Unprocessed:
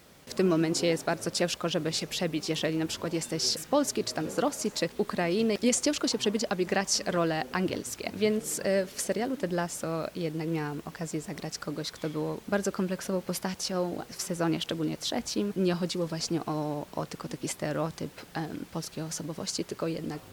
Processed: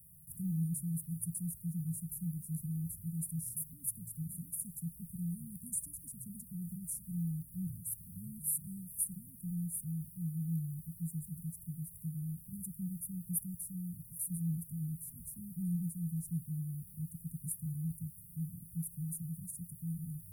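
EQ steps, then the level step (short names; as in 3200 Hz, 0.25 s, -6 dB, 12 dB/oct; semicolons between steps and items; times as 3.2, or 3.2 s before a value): Chebyshev band-stop 170–9700 Hz, order 5; low shelf 270 Hz -8.5 dB; +6.5 dB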